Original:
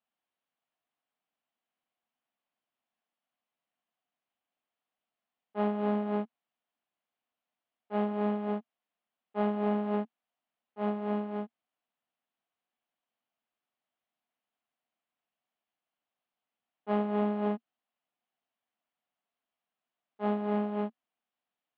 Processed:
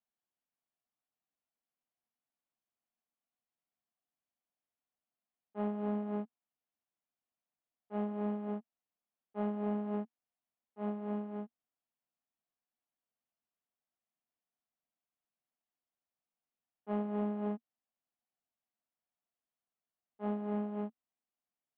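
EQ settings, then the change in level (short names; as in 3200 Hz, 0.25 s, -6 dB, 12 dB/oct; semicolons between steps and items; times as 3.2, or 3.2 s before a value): air absorption 210 m; low shelf 160 Hz +3.5 dB; low shelf 440 Hz +3.5 dB; -8.5 dB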